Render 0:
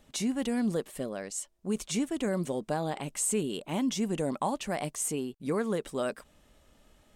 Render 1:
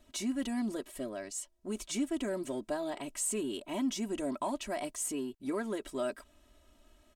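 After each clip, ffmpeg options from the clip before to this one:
-filter_complex "[0:a]aecho=1:1:3.1:0.87,asplit=2[a][b];[b]volume=34dB,asoftclip=hard,volume=-34dB,volume=-11.5dB[c];[a][c]amix=inputs=2:normalize=0,volume=-7dB"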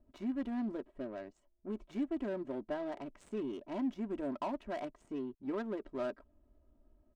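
-af "adynamicsmooth=sensitivity=5:basefreq=630,volume=-2.5dB"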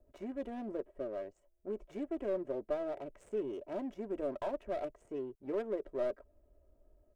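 -filter_complex "[0:a]equalizer=f=250:t=o:w=1:g=-10,equalizer=f=500:t=o:w=1:g=10,equalizer=f=1k:t=o:w=1:g=-5,equalizer=f=4k:t=o:w=1:g=-9,acrossover=split=110|690[a][b][c];[c]aeval=exprs='clip(val(0),-1,0.00224)':c=same[d];[a][b][d]amix=inputs=3:normalize=0,volume=1dB"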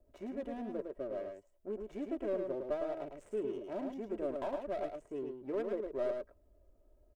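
-af "aecho=1:1:107:0.562,volume=-1dB"

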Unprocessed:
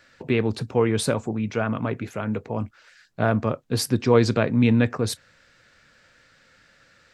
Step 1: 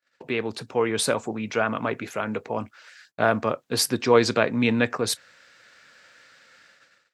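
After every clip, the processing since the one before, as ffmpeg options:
-af "highpass=f=560:p=1,dynaudnorm=f=390:g=5:m=5dB,agate=range=-30dB:threshold=-55dB:ratio=16:detection=peak"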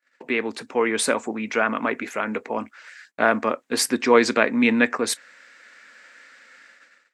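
-af "equalizer=f=125:t=o:w=1:g=-12,equalizer=f=250:t=o:w=1:g=11,equalizer=f=500:t=o:w=1:g=3,equalizer=f=1k:t=o:w=1:g=5,equalizer=f=2k:t=o:w=1:g=11,equalizer=f=8k:t=o:w=1:g=8,volume=-5dB"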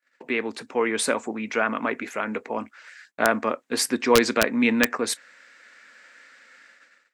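-af "aeval=exprs='(mod(1.68*val(0)+1,2)-1)/1.68':c=same,volume=-2dB"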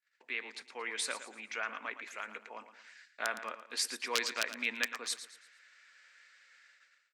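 -af "bandpass=f=4.2k:t=q:w=0.59:csg=0,aecho=1:1:113|226|339|452:0.251|0.0929|0.0344|0.0127,volume=-7dB"

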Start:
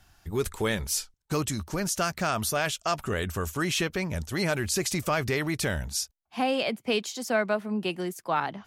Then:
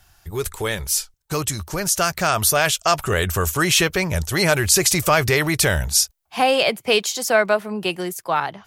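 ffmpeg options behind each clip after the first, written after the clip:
-af "equalizer=f=240:w=2.2:g=-10,dynaudnorm=f=840:g=5:m=6.5dB,highshelf=f=8.7k:g=7.5,volume=4dB"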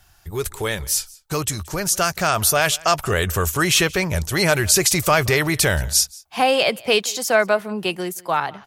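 -af "aecho=1:1:177:0.0668"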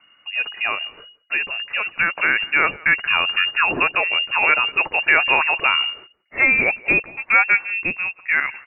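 -af "lowpass=f=2.5k:t=q:w=0.5098,lowpass=f=2.5k:t=q:w=0.6013,lowpass=f=2.5k:t=q:w=0.9,lowpass=f=2.5k:t=q:w=2.563,afreqshift=-2900,volume=1.5dB"

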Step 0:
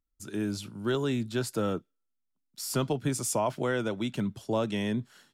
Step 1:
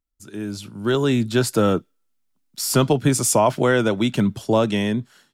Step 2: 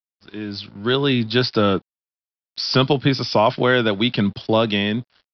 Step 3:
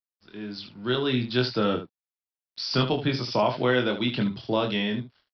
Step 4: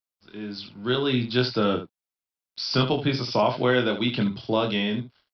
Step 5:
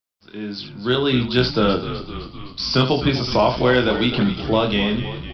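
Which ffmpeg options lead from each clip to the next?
-af "dynaudnorm=f=340:g=5:m=11.5dB"
-af "highshelf=f=2.5k:g=12,aresample=11025,aeval=exprs='sgn(val(0))*max(abs(val(0))-0.00501,0)':c=same,aresample=44100"
-af "aecho=1:1:24|75:0.596|0.299,volume=-8.5dB"
-af "bandreject=f=1.8k:w=14,volume=1.5dB"
-filter_complex "[0:a]asplit=9[a][b][c][d][e][f][g][h][i];[b]adelay=256,afreqshift=-65,volume=-11.5dB[j];[c]adelay=512,afreqshift=-130,volume=-15.4dB[k];[d]adelay=768,afreqshift=-195,volume=-19.3dB[l];[e]adelay=1024,afreqshift=-260,volume=-23.1dB[m];[f]adelay=1280,afreqshift=-325,volume=-27dB[n];[g]adelay=1536,afreqshift=-390,volume=-30.9dB[o];[h]adelay=1792,afreqshift=-455,volume=-34.8dB[p];[i]adelay=2048,afreqshift=-520,volume=-38.6dB[q];[a][j][k][l][m][n][o][p][q]amix=inputs=9:normalize=0,acontrast=29"

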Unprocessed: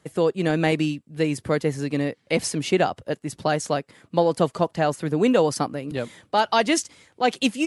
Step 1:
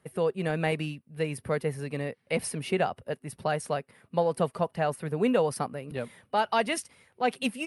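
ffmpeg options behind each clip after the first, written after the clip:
-af "superequalizer=6b=0.398:13b=0.562:14b=0.501:15b=0.282:16b=1.41,volume=-5.5dB"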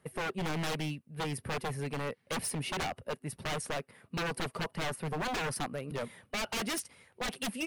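-af "aeval=exprs='0.0376*(abs(mod(val(0)/0.0376+3,4)-2)-1)':c=same"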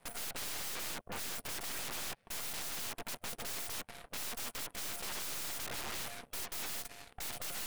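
-af "aeval=exprs='val(0)*sin(2*PI*350*n/s)':c=same,aeval=exprs='(mod(158*val(0)+1,2)-1)/158':c=same,aeval=exprs='0.00668*(cos(1*acos(clip(val(0)/0.00668,-1,1)))-cos(1*PI/2))+0.000944*(cos(3*acos(clip(val(0)/0.00668,-1,1)))-cos(3*PI/2))+0.00237*(cos(6*acos(clip(val(0)/0.00668,-1,1)))-cos(6*PI/2))':c=same,volume=8dB"

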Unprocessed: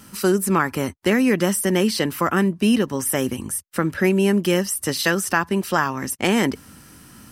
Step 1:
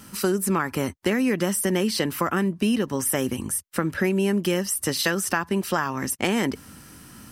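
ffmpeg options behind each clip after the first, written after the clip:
-af "acompressor=threshold=-20dB:ratio=3"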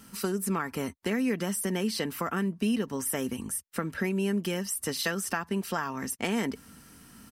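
-af "aecho=1:1:4.4:0.31,volume=-7dB"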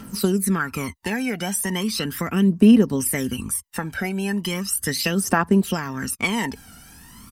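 -af "aphaser=in_gain=1:out_gain=1:delay=1.4:decay=0.7:speed=0.37:type=triangular,volume=5dB"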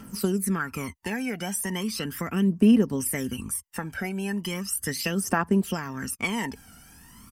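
-af "equalizer=f=3.9k:w=6.8:g=-9.5,volume=-5dB"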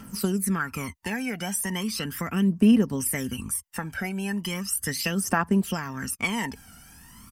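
-af "equalizer=f=380:w=1.2:g=-4,volume=1.5dB"

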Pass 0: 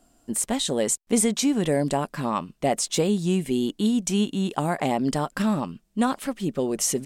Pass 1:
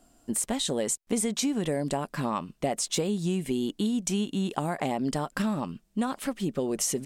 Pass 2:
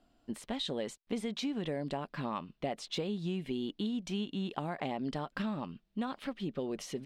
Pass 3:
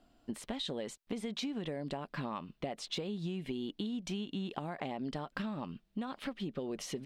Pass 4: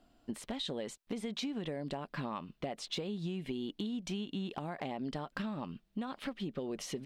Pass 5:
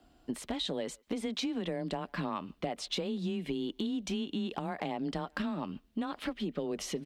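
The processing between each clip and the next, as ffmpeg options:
-af "acompressor=threshold=-25dB:ratio=4"
-af "highshelf=f=5.5k:t=q:w=1.5:g=-13.5,volume=-7.5dB"
-af "acompressor=threshold=-37dB:ratio=6,volume=2.5dB"
-af "volume=27dB,asoftclip=hard,volume=-27dB"
-filter_complex "[0:a]asplit=2[a][b];[b]adelay=140,highpass=300,lowpass=3.4k,asoftclip=type=hard:threshold=-37dB,volume=-27dB[c];[a][c]amix=inputs=2:normalize=0,afreqshift=18,volume=3.5dB"

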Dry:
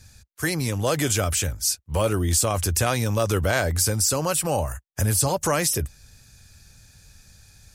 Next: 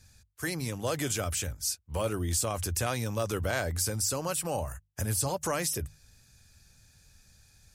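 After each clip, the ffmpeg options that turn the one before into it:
-af "bandreject=f=50:t=h:w=6,bandreject=f=100:t=h:w=6,bandreject=f=150:t=h:w=6,volume=-8dB"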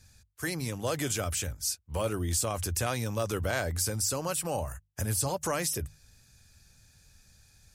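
-af anull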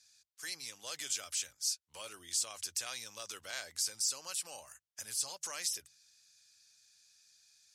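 -af "bandpass=f=5k:t=q:w=1.1:csg=0"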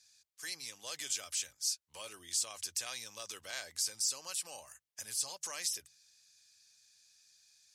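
-af "bandreject=f=1.4k:w=12"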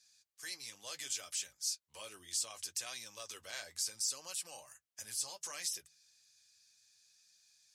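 -af "flanger=delay=4.9:depth=5.6:regen=-43:speed=0.68:shape=triangular,volume=1.5dB"

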